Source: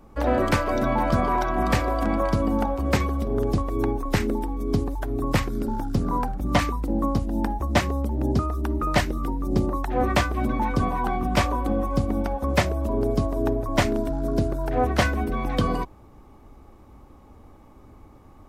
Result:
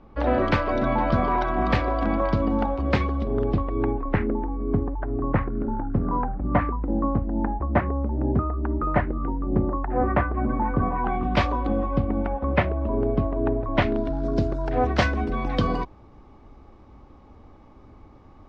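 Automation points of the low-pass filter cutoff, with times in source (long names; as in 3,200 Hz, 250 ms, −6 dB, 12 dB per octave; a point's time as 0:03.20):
low-pass filter 24 dB per octave
0:03.22 4,200 Hz
0:04.45 1,800 Hz
0:10.83 1,800 Hz
0:11.47 4,900 Hz
0:12.10 2,700 Hz
0:13.59 2,700 Hz
0:14.30 5,400 Hz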